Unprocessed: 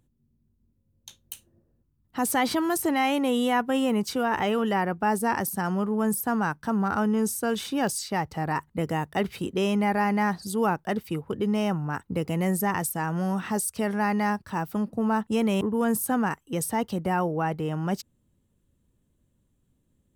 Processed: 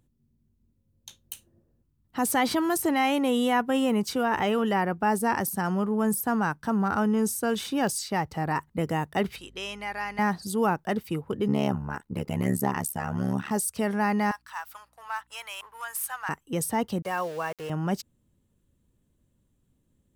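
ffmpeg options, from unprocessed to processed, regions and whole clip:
-filter_complex "[0:a]asettb=1/sr,asplit=3[a][b][c];[a]atrim=end=9.364[d];[b]atrim=start=9.36:end=10.19,asetpts=PTS-STARTPTS,afade=t=in:d=0.004:c=qsin,afade=t=out:st=0.826:d=0.004:c=qsin,bandpass=f=3.8k:t=q:w=0.56,aeval=exprs='val(0)+0.00224*(sin(2*PI*50*n/s)+sin(2*PI*2*50*n/s)/2+sin(2*PI*3*50*n/s)/3+sin(2*PI*4*50*n/s)/4+sin(2*PI*5*50*n/s)/5)':c=same[e];[c]atrim=start=10.186[f];[d][e]acrossfade=d=0.004:c1=hsin:c2=qsin[g];[g][f]acrossfade=d=0.004:c1=qsin:c2=hsin,asettb=1/sr,asplit=3[h][i][j];[h]atrim=end=11.484[k];[i]atrim=start=11.48:end=13.51,asetpts=PTS-STARTPTS,afade=t=in:d=0.004:c=qsin,afade=t=out:st=2.026:d=0.004:c=qsin,aecho=1:1:4.8:0.64,atrim=end_sample=89523,asoftclip=type=hard:threshold=-14dB,tremolo=f=71:d=0.974[l];[j]atrim=start=13.506[m];[k][l]acrossfade=d=0.004:c1=hsin:c2=qsin[n];[n][m]acrossfade=d=0.004:c1=qsin:c2=hsin,asettb=1/sr,asplit=3[o][p][q];[o]atrim=end=14.314[r];[p]atrim=start=14.31:end=16.29,asetpts=PTS-STARTPTS,afade=t=in:d=0.004:c=qsin,afade=t=out:st=1.976:d=0.004:c=qsin,aeval=exprs='if(lt(val(0),0),0.708*val(0),val(0))':c=same,highpass=f=1k:w=0.5412,highpass=f=1k:w=1.3066,aeval=exprs='val(0)+0.000316*(sin(2*PI*60*n/s)+sin(2*PI*2*60*n/s)/2+sin(2*PI*3*60*n/s)/3+sin(2*PI*4*60*n/s)/4+sin(2*PI*5*60*n/s)/5)':c=same[s];[q]atrim=start=16.286[t];[r][s]acrossfade=d=0.004:c1=hsin:c2=qsin[u];[u][t]acrossfade=d=0.004:c1=qsin:c2=hsin,asettb=1/sr,asplit=3[v][w][x];[v]atrim=end=17.024[y];[w]atrim=start=17.02:end=17.7,asetpts=PTS-STARTPTS,afade=t=in:d=0.004:c=qsin,afade=t=out:st=0.676:d=0.004:c=qsin,highpass=f=770:p=1,aecho=1:1:1.8:0.51,atrim=end_sample=29988,aeval=exprs='val(0)*gte(abs(val(0)),0.00891)':c=same[z];[x]atrim=start=17.696[aa];[y][z]acrossfade=d=0.004:c1=hsin:c2=qsin[ab];[ab][aa]acrossfade=d=0.004:c1=qsin:c2=hsin"

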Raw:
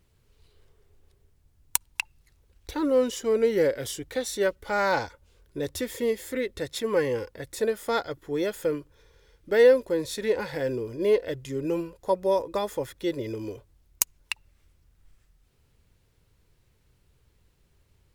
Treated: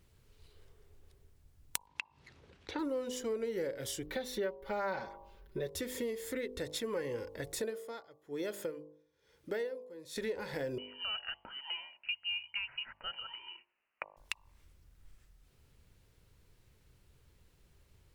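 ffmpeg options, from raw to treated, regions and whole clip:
-filter_complex "[0:a]asettb=1/sr,asplit=3[a][b][c];[a]atrim=end=1.874[d];[b]atrim=start=1.87:end=2.79,asetpts=PTS-STARTPTS,afade=t=in:d=0.004:c=qsin,afade=t=out:st=0.916:d=0.004:c=qsin,acompressor=mode=upward:threshold=-38dB:ratio=2.5:attack=3.2:release=140:knee=2.83:detection=peak,highpass=140,lowpass=3.7k[e];[c]atrim=start=2.786[f];[d][e]acrossfade=d=0.004:c1=hsin:c2=qsin[g];[g][f]acrossfade=d=0.004:c1=qsin:c2=hsin,asettb=1/sr,asplit=3[h][i][j];[h]atrim=end=4.064[k];[i]atrim=start=4.06:end=5.7,asetpts=PTS-STARTPTS,afade=t=in:d=0.004:c=qsin,afade=t=out:st=1.636:d=0.004:c=qsin,equalizer=f=8k:w=0.86:g=-14,aecho=1:1:5.2:0.84,atrim=end_sample=72324[l];[j]atrim=start=5.696[m];[k][l]acrossfade=d=0.004:c1=hsin:c2=qsin[n];[n][m]acrossfade=d=0.004:c1=qsin:c2=hsin,asettb=1/sr,asplit=3[o][p][q];[o]atrim=end=7.634[r];[p]atrim=start=7.63:end=10.16,asetpts=PTS-STARTPTS,afade=t=in:d=0.004:c=qsin,afade=t=out:st=2.526:d=0.004:c=qsin,highpass=120,aeval=exprs='val(0)*pow(10,-24*(0.5-0.5*cos(2*PI*1.1*n/s))/20)':c=same[s];[q]atrim=start=10.156[t];[r][s]acrossfade=d=0.004:c1=hsin:c2=qsin[u];[u][t]acrossfade=d=0.004:c1=qsin:c2=hsin,asettb=1/sr,asplit=3[v][w][x];[v]atrim=end=10.784[y];[w]atrim=start=10.78:end=14.17,asetpts=PTS-STARTPTS,afade=t=in:d=0.004:c=qsin,afade=t=out:st=3.386:d=0.004:c=qsin,highpass=f=620:w=0.5412,highpass=f=620:w=1.3066,lowpass=f=2.9k:t=q:w=0.5098,lowpass=f=2.9k:t=q:w=0.6013,lowpass=f=2.9k:t=q:w=0.9,lowpass=f=2.9k:t=q:w=2.563,afreqshift=-3400[z];[x]atrim=start=14.166[aa];[y][z]acrossfade=d=0.004:c1=hsin:c2=qsin[ab];[ab][aa]acrossfade=d=0.004:c1=qsin:c2=hsin,bandreject=f=50.37:t=h:w=4,bandreject=f=100.74:t=h:w=4,bandreject=f=151.11:t=h:w=4,bandreject=f=201.48:t=h:w=4,bandreject=f=251.85:t=h:w=4,bandreject=f=302.22:t=h:w=4,bandreject=f=352.59:t=h:w=4,bandreject=f=402.96:t=h:w=4,bandreject=f=453.33:t=h:w=4,bandreject=f=503.7:t=h:w=4,bandreject=f=554.07:t=h:w=4,bandreject=f=604.44:t=h:w=4,bandreject=f=654.81:t=h:w=4,bandreject=f=705.18:t=h:w=4,bandreject=f=755.55:t=h:w=4,bandreject=f=805.92:t=h:w=4,bandreject=f=856.29:t=h:w=4,bandreject=f=906.66:t=h:w=4,bandreject=f=957.03:t=h:w=4,bandreject=f=1.0074k:t=h:w=4,bandreject=f=1.05777k:t=h:w=4,bandreject=f=1.10814k:t=h:w=4,bandreject=f=1.15851k:t=h:w=4,acompressor=threshold=-36dB:ratio=4"

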